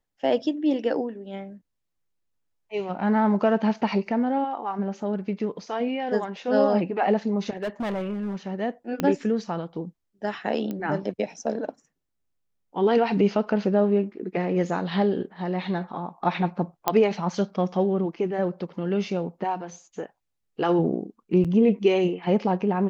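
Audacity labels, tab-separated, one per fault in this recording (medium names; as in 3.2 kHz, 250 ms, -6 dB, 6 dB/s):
7.570000	8.360000	clipped -25 dBFS
9.000000	9.000000	pop -11 dBFS
10.710000	10.710000	pop -19 dBFS
16.880000	16.880000	pop -6 dBFS
21.440000	21.450000	dropout 6.9 ms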